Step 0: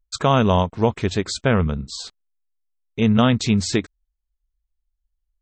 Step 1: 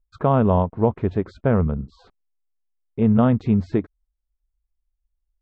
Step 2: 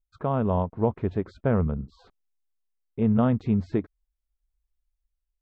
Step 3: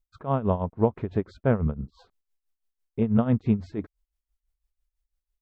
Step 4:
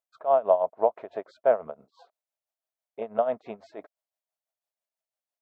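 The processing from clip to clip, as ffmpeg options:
-af "lowpass=1000"
-af "dynaudnorm=f=120:g=9:m=2.24,volume=0.376"
-af "tremolo=f=6:d=0.81,volume=1.41"
-af "highpass=f=640:t=q:w=6,volume=0.631"

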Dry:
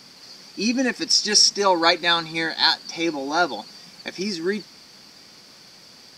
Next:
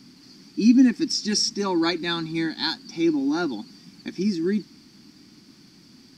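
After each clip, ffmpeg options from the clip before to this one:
-af "lowshelf=f=390:t=q:w=3:g=10,volume=0.398"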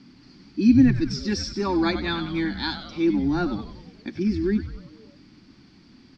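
-filter_complex "[0:a]lowpass=3400,asplit=2[s0][s1];[s1]asplit=6[s2][s3][s4][s5][s6][s7];[s2]adelay=95,afreqshift=-130,volume=0.316[s8];[s3]adelay=190,afreqshift=-260,volume=0.17[s9];[s4]adelay=285,afreqshift=-390,volume=0.0923[s10];[s5]adelay=380,afreqshift=-520,volume=0.0495[s11];[s6]adelay=475,afreqshift=-650,volume=0.0269[s12];[s7]adelay=570,afreqshift=-780,volume=0.0145[s13];[s8][s9][s10][s11][s12][s13]amix=inputs=6:normalize=0[s14];[s0][s14]amix=inputs=2:normalize=0"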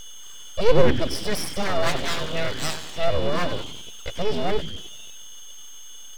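-af "aeval=exprs='val(0)+0.0112*sin(2*PI*3200*n/s)':c=same,aeval=exprs='abs(val(0))':c=same,volume=1.5"

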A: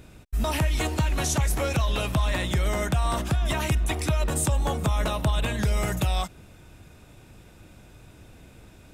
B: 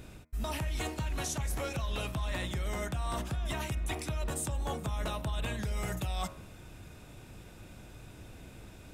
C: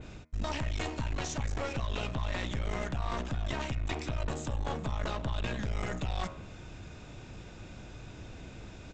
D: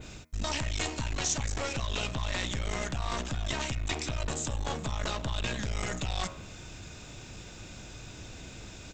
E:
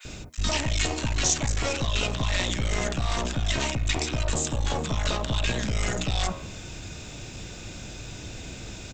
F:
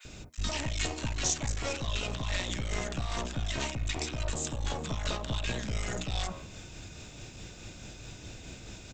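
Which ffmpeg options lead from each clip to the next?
-af "bandreject=f=78.45:t=h:w=4,bandreject=f=156.9:t=h:w=4,bandreject=f=235.35:t=h:w=4,bandreject=f=313.8:t=h:w=4,bandreject=f=392.25:t=h:w=4,bandreject=f=470.7:t=h:w=4,bandreject=f=549.15:t=h:w=4,bandreject=f=627.6:t=h:w=4,bandreject=f=706.05:t=h:w=4,bandreject=f=784.5:t=h:w=4,bandreject=f=862.95:t=h:w=4,bandreject=f=941.4:t=h:w=4,bandreject=f=1019.85:t=h:w=4,bandreject=f=1098.3:t=h:w=4,bandreject=f=1176.75:t=h:w=4,bandreject=f=1255.2:t=h:w=4,bandreject=f=1333.65:t=h:w=4,bandreject=f=1412.1:t=h:w=4,bandreject=f=1490.55:t=h:w=4,bandreject=f=1569:t=h:w=4,bandreject=f=1647.45:t=h:w=4,bandreject=f=1725.9:t=h:w=4,bandreject=f=1804.35:t=h:w=4,bandreject=f=1882.8:t=h:w=4,bandreject=f=1961.25:t=h:w=4,bandreject=f=2039.7:t=h:w=4,bandreject=f=2118.15:t=h:w=4,bandreject=f=2196.6:t=h:w=4,bandreject=f=2275.05:t=h:w=4,bandreject=f=2353.5:t=h:w=4,bandreject=f=2431.95:t=h:w=4,bandreject=f=2510.4:t=h:w=4,areverse,acompressor=threshold=0.0224:ratio=4,areverse"
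-af "adynamicequalizer=threshold=0.00126:dfrequency=5600:dqfactor=1.2:tfrequency=5600:tqfactor=1.2:attack=5:release=100:ratio=0.375:range=2.5:mode=cutabove:tftype=bell,aresample=16000,aeval=exprs='clip(val(0),-1,0.00708)':c=same,aresample=44100,volume=1.5"
-af "crystalizer=i=3.5:c=0"
-filter_complex "[0:a]acrossover=split=1200[s0][s1];[s0]adelay=50[s2];[s2][s1]amix=inputs=2:normalize=0,volume=2.11"
-af "tremolo=f=4.7:d=0.3,volume=0.531"

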